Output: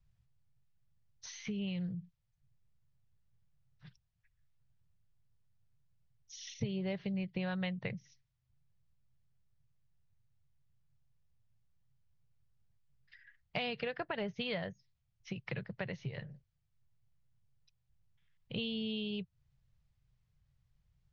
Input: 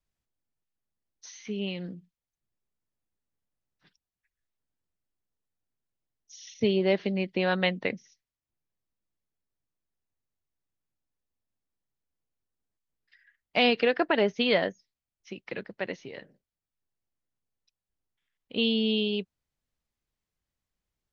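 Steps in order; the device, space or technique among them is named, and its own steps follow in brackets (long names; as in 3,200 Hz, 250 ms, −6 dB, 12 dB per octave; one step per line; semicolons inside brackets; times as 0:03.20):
jukebox (low-pass filter 5,500 Hz; low shelf with overshoot 190 Hz +12.5 dB, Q 3; downward compressor 4 to 1, threshold −39 dBFS, peak gain reduction 18.5 dB)
level +1.5 dB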